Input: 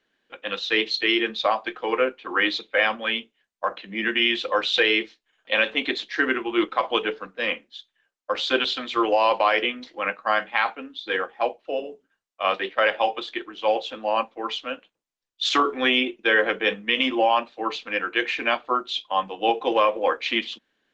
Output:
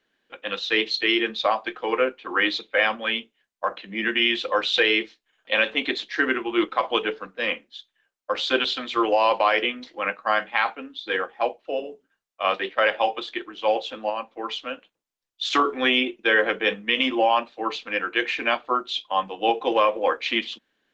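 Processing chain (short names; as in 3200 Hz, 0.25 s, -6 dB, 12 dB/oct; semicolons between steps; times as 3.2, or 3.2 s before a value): 14.09–15.53 compressor 6:1, threshold -25 dBFS, peak gain reduction 7.5 dB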